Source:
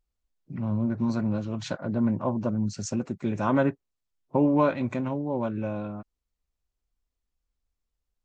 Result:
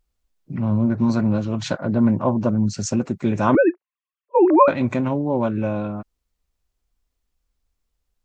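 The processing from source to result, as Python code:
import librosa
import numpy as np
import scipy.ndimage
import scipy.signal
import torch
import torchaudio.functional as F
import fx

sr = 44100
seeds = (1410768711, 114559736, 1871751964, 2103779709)

y = fx.sine_speech(x, sr, at=(3.55, 4.68))
y = y * librosa.db_to_amplitude(7.5)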